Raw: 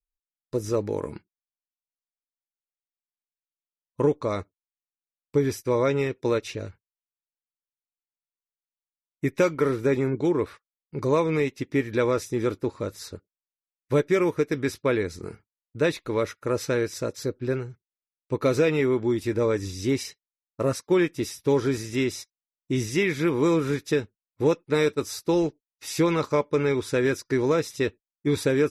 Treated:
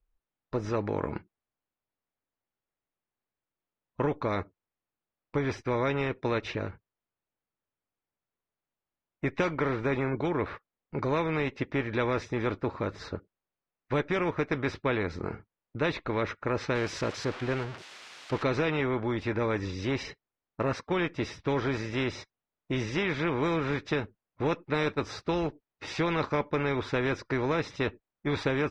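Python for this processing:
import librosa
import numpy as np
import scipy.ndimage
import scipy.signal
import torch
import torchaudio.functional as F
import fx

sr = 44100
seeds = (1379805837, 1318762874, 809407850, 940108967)

y = fx.crossing_spikes(x, sr, level_db=-24.0, at=(16.75, 18.43))
y = fx.spacing_loss(y, sr, db_at_10k=45)
y = fx.spectral_comp(y, sr, ratio=2.0)
y = y * 10.0 ** (-1.5 / 20.0)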